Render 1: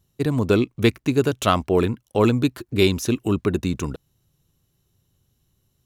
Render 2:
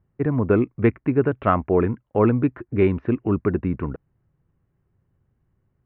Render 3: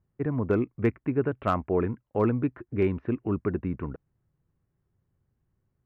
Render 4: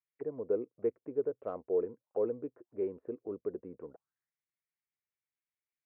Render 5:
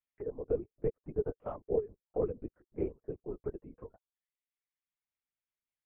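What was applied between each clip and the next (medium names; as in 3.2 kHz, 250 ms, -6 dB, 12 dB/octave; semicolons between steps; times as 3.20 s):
steep low-pass 2.1 kHz 36 dB/octave
hard clipper -7.5 dBFS, distortion -32 dB; trim -6.5 dB
auto-wah 480–2300 Hz, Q 5.4, down, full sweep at -28 dBFS
reverb removal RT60 0.99 s; LPC vocoder at 8 kHz whisper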